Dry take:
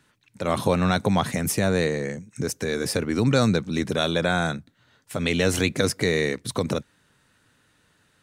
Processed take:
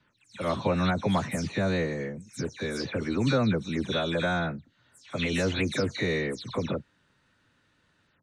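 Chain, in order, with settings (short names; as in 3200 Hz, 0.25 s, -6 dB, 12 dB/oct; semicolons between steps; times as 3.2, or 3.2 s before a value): spectral delay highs early, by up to 0.155 s; LPF 5400 Hz 12 dB/oct; gain -4 dB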